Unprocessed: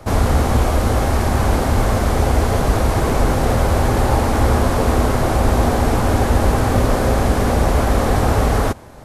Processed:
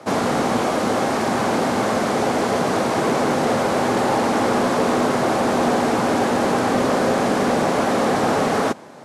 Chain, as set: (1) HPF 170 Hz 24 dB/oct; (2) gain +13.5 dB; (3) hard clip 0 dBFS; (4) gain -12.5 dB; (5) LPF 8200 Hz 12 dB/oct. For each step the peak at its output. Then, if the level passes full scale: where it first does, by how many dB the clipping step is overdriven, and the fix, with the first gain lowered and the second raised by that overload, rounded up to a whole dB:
-6.5, +7.0, 0.0, -12.5, -12.0 dBFS; step 2, 7.0 dB; step 2 +6.5 dB, step 4 -5.5 dB

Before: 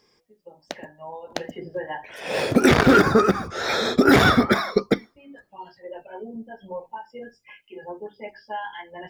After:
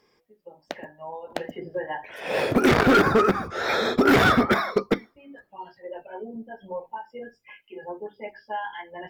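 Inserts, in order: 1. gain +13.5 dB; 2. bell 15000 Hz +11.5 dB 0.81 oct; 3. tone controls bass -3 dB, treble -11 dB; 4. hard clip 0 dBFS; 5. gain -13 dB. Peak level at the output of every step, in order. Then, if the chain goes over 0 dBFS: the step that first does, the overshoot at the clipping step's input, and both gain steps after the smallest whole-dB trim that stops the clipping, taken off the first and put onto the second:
+9.0, +9.0, +8.0, 0.0, -13.0 dBFS; step 1, 8.0 dB; step 1 +5.5 dB, step 5 -5 dB

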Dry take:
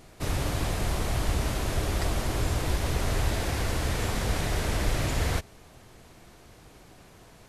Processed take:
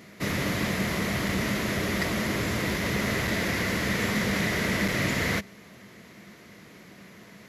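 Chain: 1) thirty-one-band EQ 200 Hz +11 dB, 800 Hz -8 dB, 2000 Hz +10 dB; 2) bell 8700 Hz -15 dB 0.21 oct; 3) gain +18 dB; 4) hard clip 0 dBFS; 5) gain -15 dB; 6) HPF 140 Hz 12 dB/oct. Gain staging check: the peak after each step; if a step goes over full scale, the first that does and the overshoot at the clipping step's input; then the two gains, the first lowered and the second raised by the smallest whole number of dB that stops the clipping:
-12.0, -12.0, +6.0, 0.0, -15.0, -13.5 dBFS; step 3, 6.0 dB; step 3 +12 dB, step 5 -9 dB

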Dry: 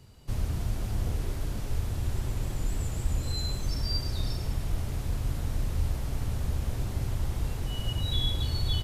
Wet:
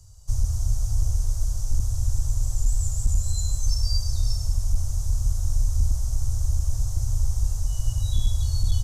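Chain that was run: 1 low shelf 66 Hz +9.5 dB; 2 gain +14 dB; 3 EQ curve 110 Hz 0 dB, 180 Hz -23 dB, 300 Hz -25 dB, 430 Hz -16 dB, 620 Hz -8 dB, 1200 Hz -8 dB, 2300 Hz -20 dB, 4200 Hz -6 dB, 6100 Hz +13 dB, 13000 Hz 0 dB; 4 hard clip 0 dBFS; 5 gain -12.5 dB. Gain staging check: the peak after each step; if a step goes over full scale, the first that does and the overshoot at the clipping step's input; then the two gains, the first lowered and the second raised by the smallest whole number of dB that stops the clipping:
-9.5, +4.5, +4.5, 0.0, -12.5 dBFS; step 2, 4.5 dB; step 2 +9 dB, step 5 -7.5 dB

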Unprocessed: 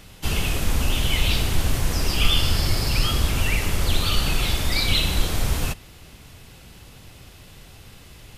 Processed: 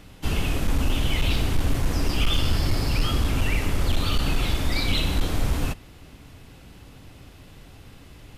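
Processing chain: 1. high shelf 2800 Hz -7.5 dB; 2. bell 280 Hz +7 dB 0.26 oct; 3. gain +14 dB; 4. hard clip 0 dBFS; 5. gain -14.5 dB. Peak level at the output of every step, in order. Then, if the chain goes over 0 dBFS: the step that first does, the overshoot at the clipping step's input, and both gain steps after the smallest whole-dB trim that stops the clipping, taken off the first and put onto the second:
-5.5, -5.5, +8.5, 0.0, -14.5 dBFS; step 3, 8.5 dB; step 3 +5 dB, step 5 -5.5 dB

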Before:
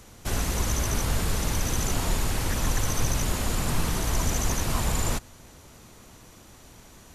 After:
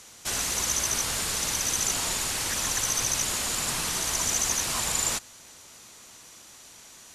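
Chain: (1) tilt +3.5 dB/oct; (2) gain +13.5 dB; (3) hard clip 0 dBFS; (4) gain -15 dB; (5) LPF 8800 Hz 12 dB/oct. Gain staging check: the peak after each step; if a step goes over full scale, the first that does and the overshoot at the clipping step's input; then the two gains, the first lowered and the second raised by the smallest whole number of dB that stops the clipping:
-9.5, +4.0, 0.0, -15.0, -14.0 dBFS; step 2, 4.0 dB; step 2 +9.5 dB, step 4 -11 dB

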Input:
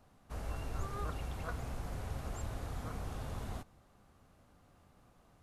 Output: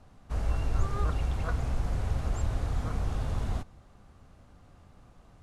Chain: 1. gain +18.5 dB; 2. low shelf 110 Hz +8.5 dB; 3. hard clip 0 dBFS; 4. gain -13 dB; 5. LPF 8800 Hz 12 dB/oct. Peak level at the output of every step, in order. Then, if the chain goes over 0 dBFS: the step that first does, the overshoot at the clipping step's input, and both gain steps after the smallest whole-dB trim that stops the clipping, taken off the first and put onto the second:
-8.0, -2.0, -2.0, -15.0, -15.0 dBFS; no overload

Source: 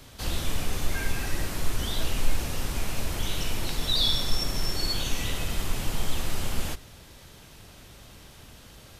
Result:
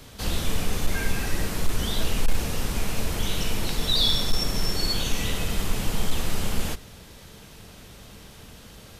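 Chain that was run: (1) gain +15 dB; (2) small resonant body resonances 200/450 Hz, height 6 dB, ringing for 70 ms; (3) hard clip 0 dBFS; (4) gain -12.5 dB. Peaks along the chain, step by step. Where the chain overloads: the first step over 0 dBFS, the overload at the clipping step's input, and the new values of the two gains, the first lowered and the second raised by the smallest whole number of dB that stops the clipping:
+5.0, +5.0, 0.0, -12.5 dBFS; step 1, 5.0 dB; step 1 +10 dB, step 4 -7.5 dB

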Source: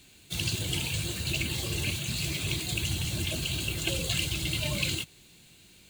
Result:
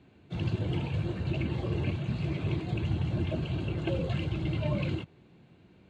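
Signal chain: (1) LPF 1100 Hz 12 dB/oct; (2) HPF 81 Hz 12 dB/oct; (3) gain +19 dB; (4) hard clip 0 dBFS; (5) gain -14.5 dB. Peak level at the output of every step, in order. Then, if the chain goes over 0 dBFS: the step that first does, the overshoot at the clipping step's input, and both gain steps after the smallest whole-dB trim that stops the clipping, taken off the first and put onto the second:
-21.5, -23.0, -4.0, -4.0, -18.5 dBFS; no overload

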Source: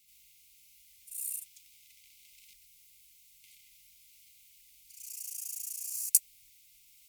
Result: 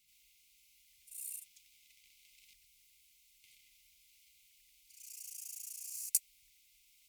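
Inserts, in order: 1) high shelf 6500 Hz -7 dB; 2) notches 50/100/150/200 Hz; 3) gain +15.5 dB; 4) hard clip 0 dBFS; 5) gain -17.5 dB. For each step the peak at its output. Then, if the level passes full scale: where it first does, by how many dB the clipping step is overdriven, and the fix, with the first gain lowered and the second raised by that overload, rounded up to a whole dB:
-11.5, -11.5, +4.0, 0.0, -17.5 dBFS; step 3, 4.0 dB; step 3 +11.5 dB, step 5 -13.5 dB

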